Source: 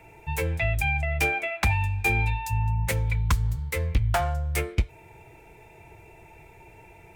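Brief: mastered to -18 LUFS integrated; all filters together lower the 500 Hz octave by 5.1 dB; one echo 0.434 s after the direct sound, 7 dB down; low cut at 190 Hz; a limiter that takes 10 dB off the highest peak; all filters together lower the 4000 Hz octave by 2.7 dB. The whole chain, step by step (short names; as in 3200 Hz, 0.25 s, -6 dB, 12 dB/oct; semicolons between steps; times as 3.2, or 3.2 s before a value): HPF 190 Hz; bell 500 Hz -7 dB; bell 4000 Hz -3.5 dB; limiter -24 dBFS; echo 0.434 s -7 dB; gain +15.5 dB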